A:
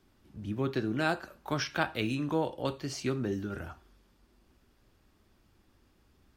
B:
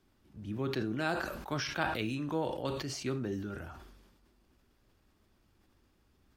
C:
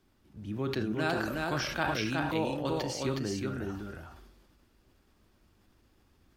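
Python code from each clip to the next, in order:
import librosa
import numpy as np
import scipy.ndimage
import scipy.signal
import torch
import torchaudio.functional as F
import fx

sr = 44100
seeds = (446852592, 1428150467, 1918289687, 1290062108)

y1 = fx.sustainer(x, sr, db_per_s=44.0)
y1 = F.gain(torch.from_numpy(y1), -4.0).numpy()
y2 = y1 + 10.0 ** (-3.0 / 20.0) * np.pad(y1, (int(366 * sr / 1000.0), 0))[:len(y1)]
y2 = F.gain(torch.from_numpy(y2), 1.5).numpy()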